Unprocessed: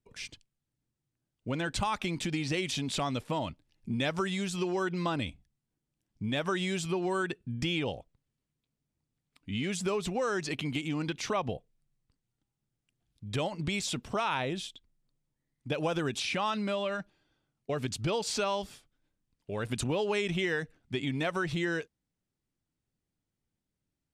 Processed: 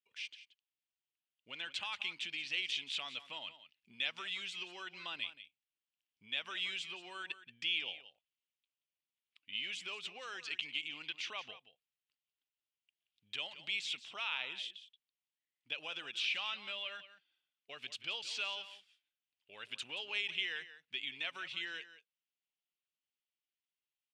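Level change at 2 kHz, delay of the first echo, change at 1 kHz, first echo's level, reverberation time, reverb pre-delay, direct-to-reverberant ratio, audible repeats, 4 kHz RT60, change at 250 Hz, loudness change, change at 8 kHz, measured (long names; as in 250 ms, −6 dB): −3.5 dB, 178 ms, −15.0 dB, −14.0 dB, no reverb audible, no reverb audible, no reverb audible, 1, no reverb audible, −28.0 dB, −7.0 dB, −13.5 dB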